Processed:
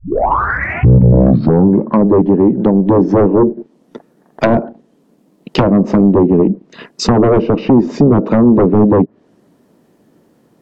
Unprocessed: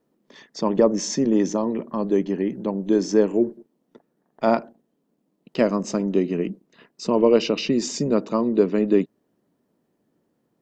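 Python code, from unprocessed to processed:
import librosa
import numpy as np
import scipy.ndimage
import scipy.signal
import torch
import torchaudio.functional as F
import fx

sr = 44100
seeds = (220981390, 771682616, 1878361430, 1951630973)

y = fx.tape_start_head(x, sr, length_s=2.0)
y = fx.fold_sine(y, sr, drive_db=13, ceiling_db=-4.0)
y = fx.env_lowpass_down(y, sr, base_hz=630.0, full_db=-7.0)
y = F.gain(torch.from_numpy(y), 1.0).numpy()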